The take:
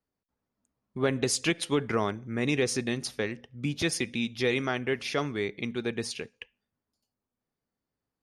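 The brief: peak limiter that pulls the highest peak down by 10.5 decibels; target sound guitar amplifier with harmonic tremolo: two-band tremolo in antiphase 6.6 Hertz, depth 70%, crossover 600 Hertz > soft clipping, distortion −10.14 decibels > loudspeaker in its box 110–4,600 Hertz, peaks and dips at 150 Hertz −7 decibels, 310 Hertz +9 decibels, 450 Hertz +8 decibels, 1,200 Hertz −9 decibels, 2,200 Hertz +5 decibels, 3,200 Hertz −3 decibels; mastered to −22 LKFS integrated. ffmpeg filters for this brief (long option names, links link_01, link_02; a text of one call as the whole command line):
ffmpeg -i in.wav -filter_complex "[0:a]alimiter=limit=-23.5dB:level=0:latency=1,acrossover=split=600[link_01][link_02];[link_01]aeval=exprs='val(0)*(1-0.7/2+0.7/2*cos(2*PI*6.6*n/s))':channel_layout=same[link_03];[link_02]aeval=exprs='val(0)*(1-0.7/2-0.7/2*cos(2*PI*6.6*n/s))':channel_layout=same[link_04];[link_03][link_04]amix=inputs=2:normalize=0,asoftclip=threshold=-36.5dB,highpass=110,equalizer=frequency=150:width_type=q:width=4:gain=-7,equalizer=frequency=310:width_type=q:width=4:gain=9,equalizer=frequency=450:width_type=q:width=4:gain=8,equalizer=frequency=1200:width_type=q:width=4:gain=-9,equalizer=frequency=2200:width_type=q:width=4:gain=5,equalizer=frequency=3200:width_type=q:width=4:gain=-3,lowpass=frequency=4600:width=0.5412,lowpass=frequency=4600:width=1.3066,volume=17.5dB" out.wav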